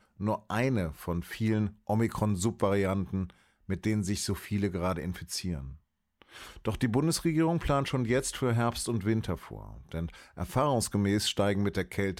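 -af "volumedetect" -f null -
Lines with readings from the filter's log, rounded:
mean_volume: -30.3 dB
max_volume: -13.7 dB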